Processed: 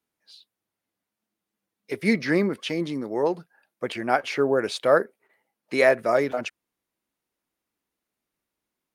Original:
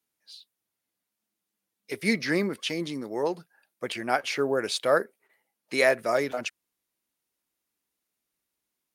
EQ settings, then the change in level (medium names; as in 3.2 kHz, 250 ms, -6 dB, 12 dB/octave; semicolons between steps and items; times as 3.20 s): treble shelf 2.8 kHz -10 dB; +4.5 dB